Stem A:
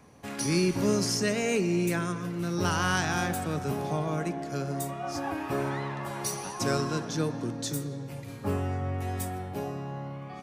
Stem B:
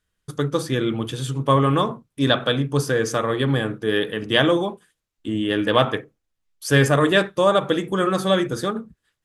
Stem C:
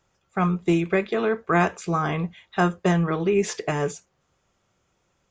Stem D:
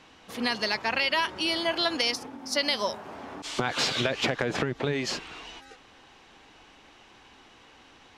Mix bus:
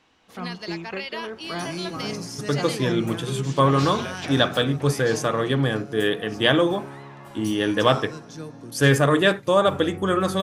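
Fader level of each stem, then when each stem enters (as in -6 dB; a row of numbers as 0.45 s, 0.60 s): -7.5 dB, -1.0 dB, -12.0 dB, -8.0 dB; 1.20 s, 2.10 s, 0.00 s, 0.00 s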